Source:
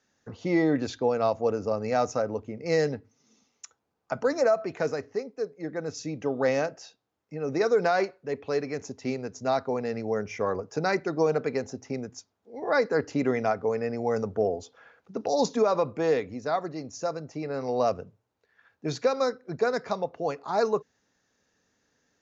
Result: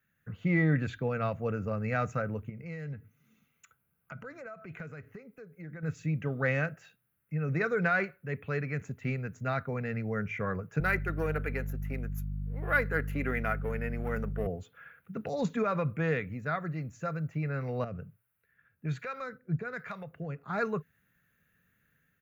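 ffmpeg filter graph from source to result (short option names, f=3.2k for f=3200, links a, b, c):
-filter_complex "[0:a]asettb=1/sr,asplit=3[a][b][c];[a]atrim=end=2.494[d];[b]atrim=start=2.49:end=5.83,asetpts=PTS-STARTPTS,afade=t=in:d=0.004:c=qsin,afade=t=out:st=3.336:d=0.004:c=qsin,bandreject=f=1.8k:w=12,acompressor=threshold=-42dB:ratio=2.5:attack=3.2:release=140:knee=1:detection=peak[e];[c]atrim=start=5.826[f];[d][e]acrossfade=d=0.004:c1=hsin:c2=qsin[g];[g][f]acrossfade=d=0.004:c1=qsin:c2=hsin,asettb=1/sr,asplit=3[h][i][j];[h]atrim=end=10.804[k];[i]atrim=start=10.8:end=14.47,asetpts=PTS-STARTPTS,afade=t=in:d=0.004:c=qsin,afade=t=out:st=3.666:d=0.004:c=qsin,aeval=exprs='if(lt(val(0),0),0.708*val(0),val(0))':c=same,highpass=f=220:w=0.5412,highpass=f=220:w=1.3066,aeval=exprs='val(0)+0.0112*(sin(2*PI*50*n/s)+sin(2*PI*2*50*n/s)/2+sin(2*PI*3*50*n/s)/3+sin(2*PI*4*50*n/s)/4+sin(2*PI*5*50*n/s)/5)':c=same[l];[j]atrim=start=14.466[m];[k][l]acrossfade=d=0.004:c1=hsin:c2=qsin[n];[n][m]acrossfade=d=0.004:c1=qsin:c2=hsin,asettb=1/sr,asplit=3[o][p][q];[o]atrim=end=17.844[r];[p]atrim=start=17.84:end=20.5,asetpts=PTS-STARTPTS,afade=t=in:d=0.004:c=qsin,afade=t=out:st=2.656:d=0.004:c=qsin,acompressor=threshold=-27dB:ratio=2.5:attack=3.2:release=140:knee=1:detection=peak,acrossover=split=580[s][t];[s]aeval=exprs='val(0)*(1-0.7/2+0.7/2*cos(2*PI*1.2*n/s))':c=same[u];[t]aeval=exprs='val(0)*(1-0.7/2-0.7/2*cos(2*PI*1.2*n/s))':c=same[v];[u][v]amix=inputs=2:normalize=0[w];[q]atrim=start=20.496[x];[r][w]acrossfade=d=0.004:c1=hsin:c2=qsin[y];[y][x]acrossfade=d=0.004:c1=qsin:c2=hsin,firequalizer=gain_entry='entry(100,0);entry(150,5);entry(260,-12);entry(380,-14);entry(540,-13);entry(870,-18);entry(1400,-1);entry(2500,-3);entry(5300,-28);entry(11000,13)':delay=0.05:min_phase=1,dynaudnorm=f=150:g=5:m=5dB"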